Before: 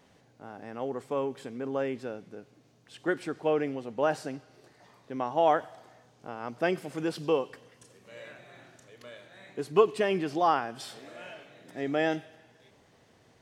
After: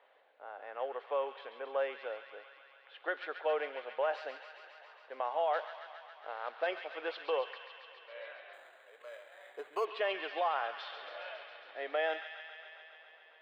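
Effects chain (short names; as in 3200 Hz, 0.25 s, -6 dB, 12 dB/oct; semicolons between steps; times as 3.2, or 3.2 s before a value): 5.53–6.67 CVSD 32 kbps; elliptic band-pass 530–3700 Hz, stop band 60 dB; low-pass opened by the level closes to 2600 Hz, open at -25.5 dBFS; limiter -23.5 dBFS, peak gain reduction 10 dB; thin delay 0.137 s, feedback 79%, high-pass 1600 Hz, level -7 dB; 8.53–9.85 decimation joined by straight lines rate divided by 8×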